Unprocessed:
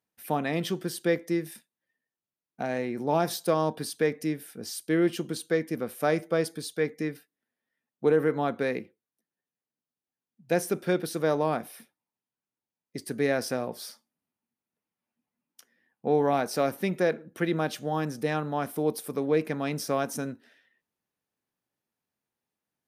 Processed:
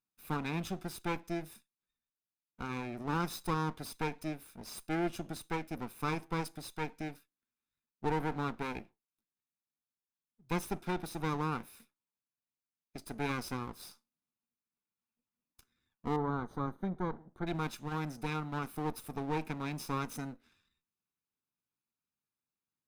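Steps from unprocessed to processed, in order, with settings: minimum comb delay 0.79 ms; 16.16–17.47 running mean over 17 samples; gain -7.5 dB

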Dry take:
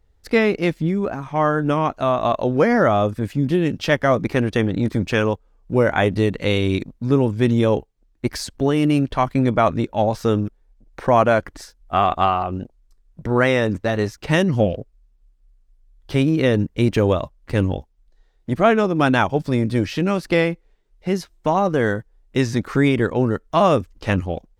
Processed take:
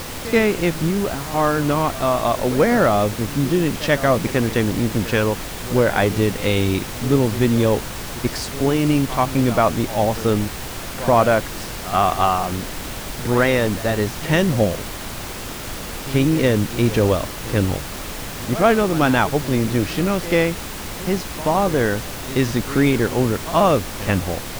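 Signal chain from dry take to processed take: added noise pink -30 dBFS; pre-echo 82 ms -15 dB

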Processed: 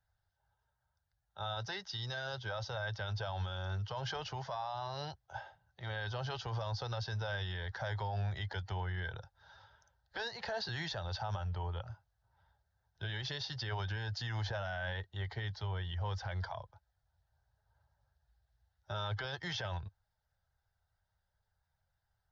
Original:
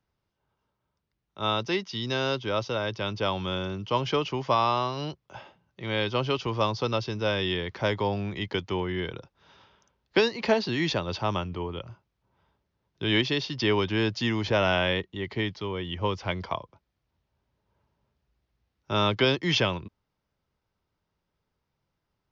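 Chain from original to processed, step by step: bin magnitudes rounded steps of 15 dB; EQ curve 100 Hz 0 dB, 270 Hz -27 dB, 800 Hz +1 dB, 1100 Hz -12 dB, 1600 Hz +2 dB, 2400 Hz -17 dB, 3800 Hz -4 dB, 8000 Hz -7 dB; limiter -32 dBFS, peak gain reduction 15 dB; gain +2 dB

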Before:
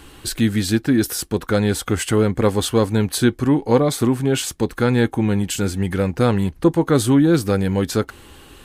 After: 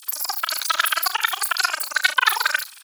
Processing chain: LFO high-pass sine 7.3 Hz 520–5800 Hz; wide varispeed 3.05×; early reflections 35 ms -11.5 dB, 69 ms -15.5 dB; gain +2 dB

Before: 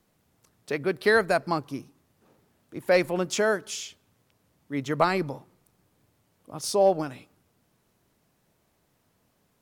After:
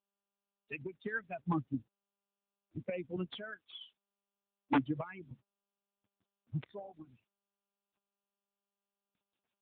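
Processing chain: per-bin expansion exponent 3; recorder AGC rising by 11 dB/s; 3.16–5.31 HPF 910 Hz 6 dB/oct; high shelf 2200 Hz +6 dB; compressor 8:1, threshold -35 dBFS, peak gain reduction 16.5 dB; phaser 0.63 Hz, delay 1.2 ms, feedback 78%; wrapped overs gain 20.5 dB; air absorption 290 m; AMR-NB 10.2 kbps 8000 Hz

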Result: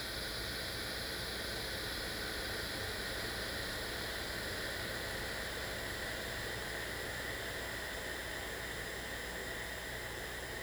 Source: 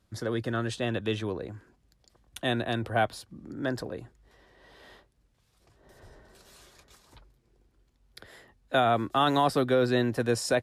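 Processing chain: Paulstretch 42×, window 0.50 s, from 8.17; bit-crush 10-bit; hum 60 Hz, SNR 11 dB; gain +10 dB

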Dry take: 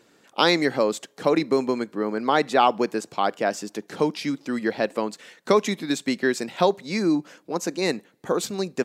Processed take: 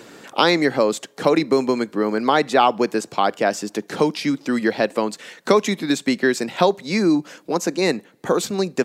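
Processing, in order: three-band squash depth 40%; gain +4 dB

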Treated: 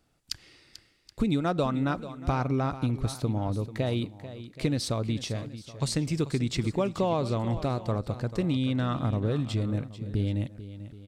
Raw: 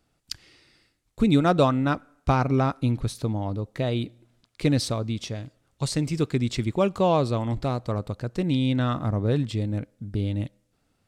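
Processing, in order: compressor 5:1, threshold -23 dBFS, peak gain reduction 8.5 dB; tapped delay 0.44/0.775 s -13.5/-19 dB

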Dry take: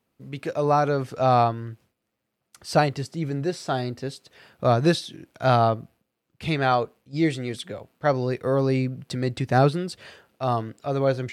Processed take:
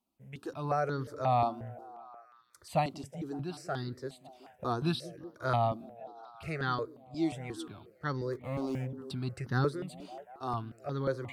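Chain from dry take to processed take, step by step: 8.32–9.01 median filter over 41 samples; delay with a stepping band-pass 0.186 s, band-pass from 230 Hz, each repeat 0.7 oct, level -11 dB; step phaser 5.6 Hz 470–2400 Hz; gain -7 dB

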